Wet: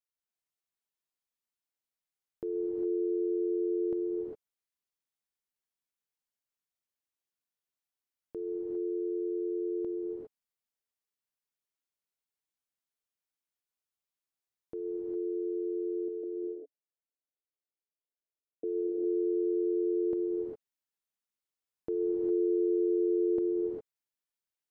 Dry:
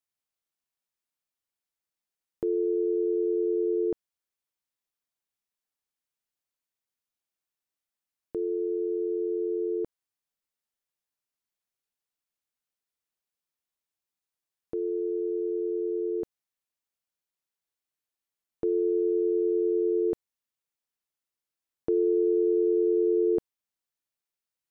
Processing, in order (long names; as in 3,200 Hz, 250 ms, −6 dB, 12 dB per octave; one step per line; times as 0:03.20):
0:16.08–0:18.64: elliptic band-pass filter 280–670 Hz, stop band 40 dB
convolution reverb, pre-delay 3 ms, DRR −1 dB
level −8 dB